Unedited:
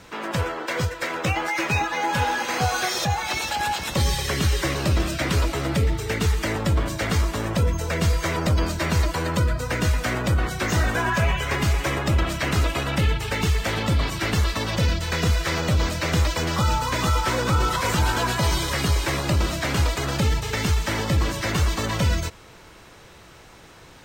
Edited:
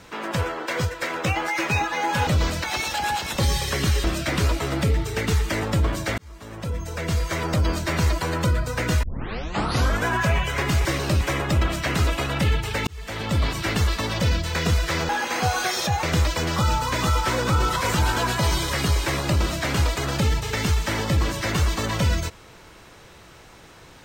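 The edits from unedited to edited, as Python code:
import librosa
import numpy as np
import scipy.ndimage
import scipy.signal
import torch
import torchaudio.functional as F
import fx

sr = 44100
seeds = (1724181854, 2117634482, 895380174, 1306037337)

y = fx.edit(x, sr, fx.swap(start_s=2.27, length_s=0.94, other_s=15.66, other_length_s=0.37),
    fx.move(start_s=4.61, length_s=0.36, to_s=11.78),
    fx.fade_in_span(start_s=7.11, length_s=1.89, curve='qsin'),
    fx.tape_start(start_s=9.96, length_s=1.02),
    fx.fade_in_span(start_s=13.44, length_s=0.54), tone=tone)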